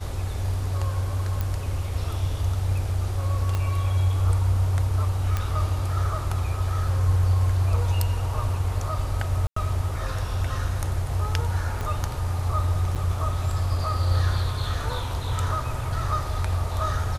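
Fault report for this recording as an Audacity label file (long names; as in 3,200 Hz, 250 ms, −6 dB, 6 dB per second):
1.410000	1.410000	click
3.550000	3.550000	click −14 dBFS
5.370000	5.370000	click −12 dBFS
9.470000	9.560000	drop-out 94 ms
11.810000	11.810000	click −17 dBFS
12.950000	12.960000	drop-out 7.4 ms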